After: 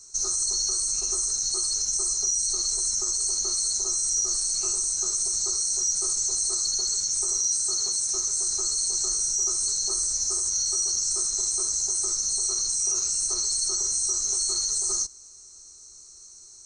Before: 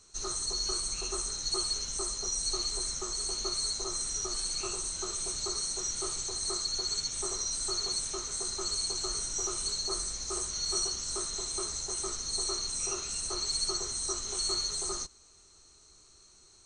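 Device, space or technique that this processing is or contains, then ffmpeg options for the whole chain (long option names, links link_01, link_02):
over-bright horn tweeter: -filter_complex "[0:a]highshelf=frequency=4300:width_type=q:width=3:gain=9.5,alimiter=limit=-15.5dB:level=0:latency=1:release=21,asettb=1/sr,asplit=3[link_01][link_02][link_03];[link_01]atrim=end=7.384[link_04];[link_02]atrim=start=7.38:end=8.14,asetpts=PTS-STARTPTS,afade=type=in:duration=0.004:curve=qsin,afade=type=out:start_time=0.756:duration=0.004:curve=qsin,highpass=frequency=74:poles=1[link_05];[link_03]atrim=start=8.136[link_06];[link_04][link_05]acrossfade=duration=0.004:curve1=hsin:curve2=qsin[link_07];[link_07][link_06]acrossfade=duration=0.004:curve1=qsin:curve2=hsin,volume=-1.5dB"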